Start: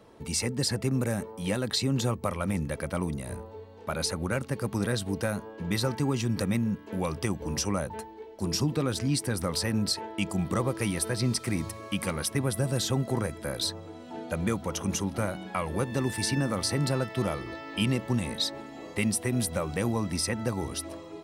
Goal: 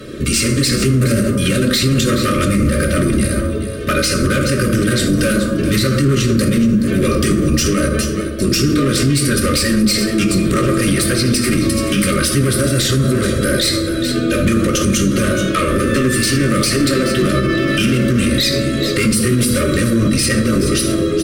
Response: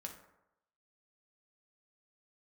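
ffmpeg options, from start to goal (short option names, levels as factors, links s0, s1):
-filter_complex "[0:a]aecho=1:1:3.3:0.71,asplit=2[s0][s1];[s1]acompressor=threshold=0.0126:ratio=20,volume=0.75[s2];[s0][s2]amix=inputs=2:normalize=0,aeval=exprs='(tanh(10*val(0)+0.3)-tanh(0.3))/10':c=same,aeval=exprs='0.075*(abs(mod(val(0)/0.075+3,4)-2)-1)':c=same,aecho=1:1:425:0.211,asplit=2[s3][s4];[s4]asetrate=22050,aresample=44100,atempo=2,volume=0.316[s5];[s3][s5]amix=inputs=2:normalize=0,asuperstop=centerf=820:order=8:qfactor=1.4[s6];[1:a]atrim=start_sample=2205,asetrate=32634,aresample=44100[s7];[s6][s7]afir=irnorm=-1:irlink=0,alimiter=level_in=23.7:limit=0.891:release=50:level=0:latency=1,volume=0.531"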